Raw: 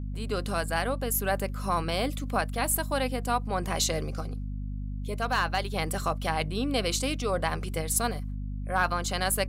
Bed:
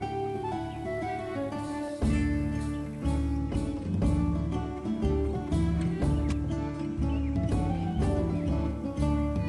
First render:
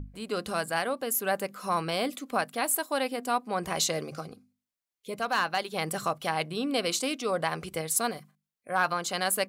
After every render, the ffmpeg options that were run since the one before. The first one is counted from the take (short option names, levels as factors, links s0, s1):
-af "bandreject=f=50:t=h:w=6,bandreject=f=100:t=h:w=6,bandreject=f=150:t=h:w=6,bandreject=f=200:t=h:w=6,bandreject=f=250:t=h:w=6"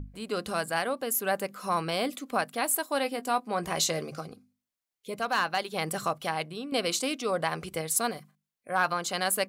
-filter_complex "[0:a]asettb=1/sr,asplit=3[s0][s1][s2];[s0]atrim=end=2.934[s3];[s1]atrim=start=2.93:end=4.11,asetpts=PTS-STARTPTS,afade=t=in:d=0.004:c=qsin,afade=t=out:st=1.176:d=0.004:c=qsin,asplit=2[s4][s5];[s5]adelay=18,volume=0.224[s6];[s4][s6]amix=inputs=2:normalize=0,atrim=end_sample=52038[s7];[s2]atrim=start=4.106[s8];[s3][s7]acrossfade=d=0.004:c1=hsin:c2=qsin[s9];[s9][s8]acrossfade=d=0.004:c1=qsin:c2=hsin,asplit=2[s10][s11];[s10]atrim=end=6.72,asetpts=PTS-STARTPTS,afade=t=out:st=6.01:d=0.71:c=qsin:silence=0.316228[s12];[s11]atrim=start=6.72,asetpts=PTS-STARTPTS,afade=t=in:d=0.004:c=hsin:silence=0.316228[s13];[s12][s13]concat=n=2:v=0:a=1"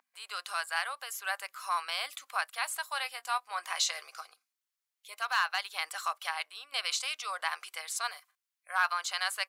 -filter_complex "[0:a]highpass=f=980:w=0.5412,highpass=f=980:w=1.3066,acrossover=split=7100[s0][s1];[s1]acompressor=threshold=0.00562:ratio=4:attack=1:release=60[s2];[s0][s2]amix=inputs=2:normalize=0"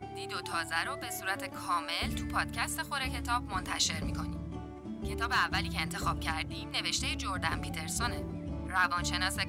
-filter_complex "[1:a]volume=0.316[s0];[0:a][s0]amix=inputs=2:normalize=0"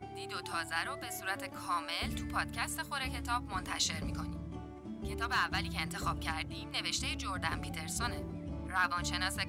-af "volume=0.708"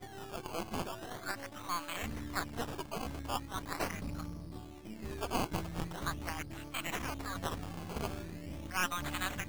-af "aeval=exprs='if(lt(val(0),0),0.447*val(0),val(0))':c=same,acrusher=samples=16:mix=1:aa=0.000001:lfo=1:lforange=16:lforate=0.41"